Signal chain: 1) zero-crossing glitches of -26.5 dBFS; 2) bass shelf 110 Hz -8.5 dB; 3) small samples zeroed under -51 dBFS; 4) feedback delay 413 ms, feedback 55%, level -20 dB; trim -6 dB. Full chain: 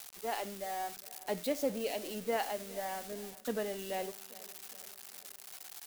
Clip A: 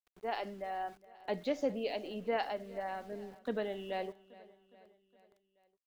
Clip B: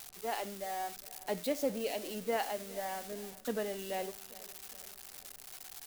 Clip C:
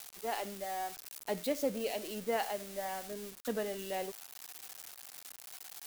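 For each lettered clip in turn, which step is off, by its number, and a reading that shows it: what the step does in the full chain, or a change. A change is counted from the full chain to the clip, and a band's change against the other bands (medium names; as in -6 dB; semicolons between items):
1, distortion -10 dB; 3, distortion -30 dB; 4, echo-to-direct -18.5 dB to none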